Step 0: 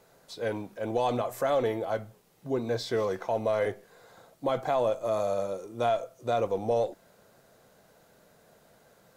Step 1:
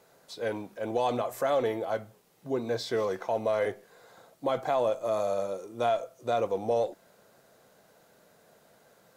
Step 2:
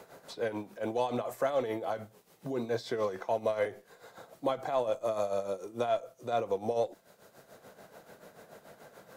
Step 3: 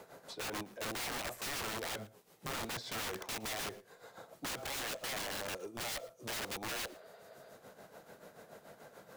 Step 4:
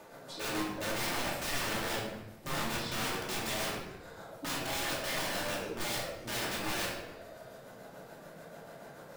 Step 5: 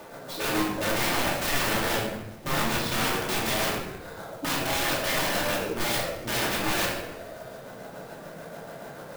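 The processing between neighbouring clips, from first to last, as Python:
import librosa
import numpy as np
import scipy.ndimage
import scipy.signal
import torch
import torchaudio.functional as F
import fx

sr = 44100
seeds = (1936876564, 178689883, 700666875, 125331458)

y1 = fx.low_shelf(x, sr, hz=97.0, db=-10.5)
y2 = y1 * (1.0 - 0.68 / 2.0 + 0.68 / 2.0 * np.cos(2.0 * np.pi * 6.9 * (np.arange(len(y1)) / sr)))
y2 = fx.band_squash(y2, sr, depth_pct=40)
y3 = fx.spec_repair(y2, sr, seeds[0], start_s=6.91, length_s=0.56, low_hz=390.0, high_hz=5000.0, source='after')
y3 = (np.mod(10.0 ** (32.5 / 20.0) * y3 + 1.0, 2.0) - 1.0) / 10.0 ** (32.5 / 20.0)
y3 = y3 + 10.0 ** (-21.5 / 20.0) * np.pad(y3, (int(114 * sr / 1000.0), 0))[:len(y3)]
y3 = y3 * librosa.db_to_amplitude(-2.0)
y4 = fx.room_shoebox(y3, sr, seeds[1], volume_m3=480.0, walls='mixed', distance_m=2.6)
y4 = y4 * librosa.db_to_amplitude(-1.5)
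y5 = fx.clock_jitter(y4, sr, seeds[2], jitter_ms=0.027)
y5 = y5 * librosa.db_to_amplitude(8.5)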